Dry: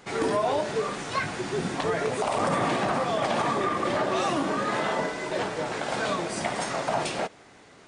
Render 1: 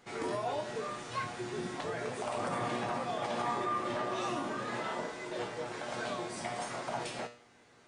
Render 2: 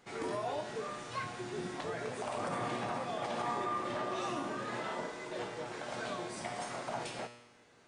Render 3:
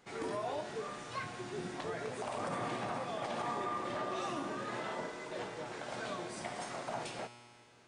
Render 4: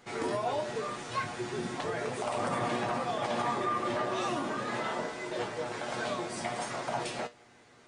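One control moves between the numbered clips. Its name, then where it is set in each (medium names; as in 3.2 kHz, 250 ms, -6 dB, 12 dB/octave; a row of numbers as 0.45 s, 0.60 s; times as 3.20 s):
feedback comb, decay: 0.45 s, 1 s, 2.2 s, 0.17 s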